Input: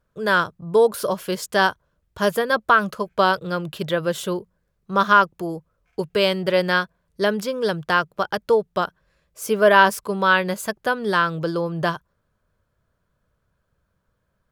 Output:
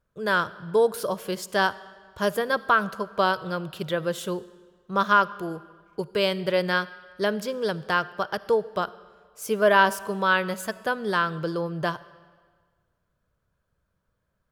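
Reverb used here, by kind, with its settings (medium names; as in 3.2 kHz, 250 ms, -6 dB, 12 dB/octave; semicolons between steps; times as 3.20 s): algorithmic reverb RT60 1.6 s, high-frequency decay 0.9×, pre-delay 15 ms, DRR 18 dB; trim -4.5 dB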